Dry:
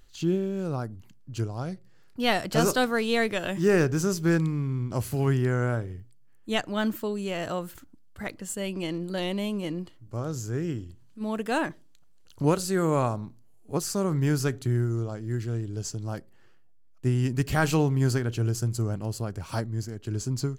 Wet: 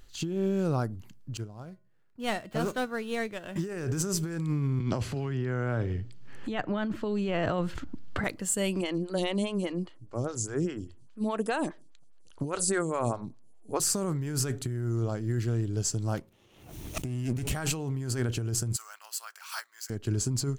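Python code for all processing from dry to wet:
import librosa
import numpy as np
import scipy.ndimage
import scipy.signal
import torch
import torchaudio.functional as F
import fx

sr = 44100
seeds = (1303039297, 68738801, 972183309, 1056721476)

y = fx.chain(x, sr, fx.median_filter(points=9),
    fx.comb_fb(f0_hz=210.0, decay_s=0.43, harmonics='odd', damping=0.0, mix_pct=60),
    fx.upward_expand(threshold_db=-40.0, expansion=1.5), at=(1.37, 3.56))
y = fx.chain(y, sr, fx.lowpass(hz=3900.0, slope=12),
    fx.band_squash(depth_pct=100), at=(4.8, 8.24))
y = fx.chain(y, sr, fx.brickwall_lowpass(high_hz=11000.0),
    fx.high_shelf(hz=4200.0, db=5.0),
    fx.stagger_phaser(hz=4.9), at=(8.81, 13.8))
y = fx.chain(y, sr, fx.lower_of_two(delay_ms=0.32),
    fx.pre_swell(db_per_s=77.0), at=(16.17, 17.51))
y = fx.chain(y, sr, fx.highpass(hz=1200.0, slope=24),
    fx.resample_bad(factor=2, down='none', up='hold'), at=(18.76, 19.9))
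y = fx.dynamic_eq(y, sr, hz=8400.0, q=2.6, threshold_db=-55.0, ratio=4.0, max_db=7)
y = fx.over_compress(y, sr, threshold_db=-29.0, ratio=-1.0)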